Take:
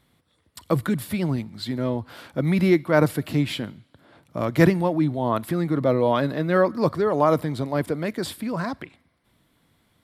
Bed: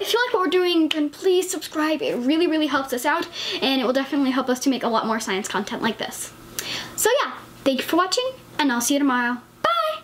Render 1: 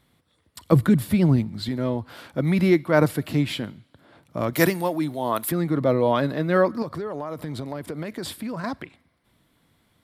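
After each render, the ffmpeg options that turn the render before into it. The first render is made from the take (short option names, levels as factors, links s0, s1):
-filter_complex "[0:a]asettb=1/sr,asplit=3[s0][s1][s2];[s0]atrim=end=0.724[s3];[s1]atrim=start=0.72:end=1.69,asetpts=PTS-STARTPTS,afade=t=in:d=0.004:c=qsin,afade=t=out:st=0.966:d=0.004:c=qsin,lowshelf=f=410:g=8[s4];[s2]atrim=start=1.686[s5];[s3][s4]acrossfade=d=0.004:c1=hsin:c2=qsin[s6];[s6][s5]acrossfade=d=0.004:c1=qsin:c2=hsin,asettb=1/sr,asplit=3[s7][s8][s9];[s7]atrim=end=4.534[s10];[s8]atrim=start=4.53:end=5.52,asetpts=PTS-STARTPTS,afade=t=in:d=0.004:c=qsin,afade=t=out:st=0.986:d=0.004:c=qsin,aemphasis=mode=production:type=bsi[s11];[s9]atrim=start=5.516[s12];[s10][s11]acrossfade=d=0.004:c1=hsin:c2=qsin[s13];[s13][s12]acrossfade=d=0.004:c1=qsin:c2=hsin,asettb=1/sr,asplit=3[s14][s15][s16];[s14]atrim=end=6.824[s17];[s15]atrim=start=6.82:end=8.64,asetpts=PTS-STARTPTS,afade=t=in:d=0.004:c=qsin,afade=t=out:st=1.816:d=0.004:c=qsin,acompressor=threshold=0.0501:ratio=16:attack=3.2:release=140:knee=1:detection=peak[s18];[s16]atrim=start=8.636[s19];[s17][s18]acrossfade=d=0.004:c1=hsin:c2=qsin[s20];[s20][s19]acrossfade=d=0.004:c1=qsin:c2=hsin"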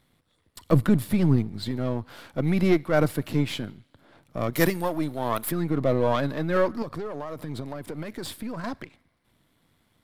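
-af "aeval=exprs='if(lt(val(0),0),0.447*val(0),val(0))':c=same"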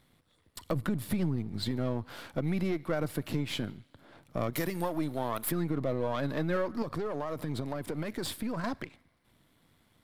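-af "alimiter=limit=0.168:level=0:latency=1:release=191,acompressor=threshold=0.0398:ratio=3"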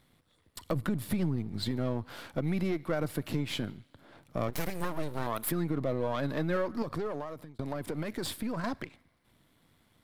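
-filter_complex "[0:a]asettb=1/sr,asplit=3[s0][s1][s2];[s0]atrim=end=4.484[s3];[s1]atrim=start=4.48:end=5.27,asetpts=PTS-STARTPTS,afade=t=in:d=0.004:c=qsin,afade=t=out:st=0.786:d=0.004:c=qsin,aeval=exprs='abs(val(0))':c=same[s4];[s2]atrim=start=5.266[s5];[s3][s4]acrossfade=d=0.004:c1=hsin:c2=qsin[s6];[s6][s5]acrossfade=d=0.004:c1=qsin:c2=hsin,asplit=2[s7][s8];[s7]atrim=end=7.59,asetpts=PTS-STARTPTS,afade=t=out:st=7.07:d=0.52[s9];[s8]atrim=start=7.59,asetpts=PTS-STARTPTS,afade=t=in:d=0.004:c=hsin[s10];[s9][s10]concat=n=2:v=0:a=1"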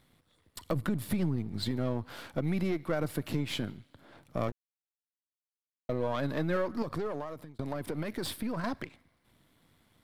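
-filter_complex "[0:a]asettb=1/sr,asplit=3[s0][s1][s2];[s0]atrim=end=7.834[s3];[s1]atrim=start=7.83:end=8.77,asetpts=PTS-STARTPTS,afade=t=in:d=0.004:c=qsin,afade=t=out:st=0.936:d=0.004:c=qsin,equalizer=f=7200:t=o:w=0.26:g=-5.5[s4];[s2]atrim=start=8.766[s5];[s3][s4]acrossfade=d=0.004:c1=hsin:c2=qsin[s6];[s6][s5]acrossfade=d=0.004:c1=qsin:c2=hsin,asplit=3[s7][s8][s9];[s7]atrim=end=4.52,asetpts=PTS-STARTPTS,afade=t=out:st=4.516:d=0.004:c=hsin[s10];[s8]atrim=start=4.52:end=5.89,asetpts=PTS-STARTPTS,volume=0[s11];[s9]atrim=start=5.89,asetpts=PTS-STARTPTS,afade=t=in:d=0.004:c=hsin[s12];[s10][s11][s12]concat=n=3:v=0:a=1"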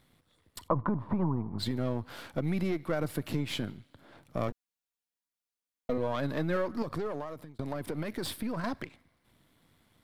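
-filter_complex "[0:a]asplit=3[s0][s1][s2];[s0]afade=t=out:st=0.67:d=0.02[s3];[s1]lowpass=f=1000:t=q:w=7.1,afade=t=in:st=0.67:d=0.02,afade=t=out:st=1.58:d=0.02[s4];[s2]afade=t=in:st=1.58:d=0.02[s5];[s3][s4][s5]amix=inputs=3:normalize=0,asettb=1/sr,asplit=3[s6][s7][s8];[s6]atrim=end=4.504[s9];[s7]atrim=start=4.5:end=5.98,asetpts=PTS-STARTPTS,afade=t=in:d=0.004:c=qsin,afade=t=out:st=1.476:d=0.004:c=qsin,aecho=1:1:4.2:0.73,atrim=end_sample=65268[s10];[s8]atrim=start=5.976[s11];[s9][s10]acrossfade=d=0.004:c1=hsin:c2=qsin[s12];[s12][s11]acrossfade=d=0.004:c1=qsin:c2=hsin"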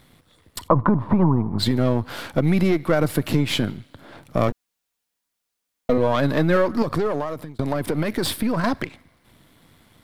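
-af "volume=3.98,alimiter=limit=0.708:level=0:latency=1"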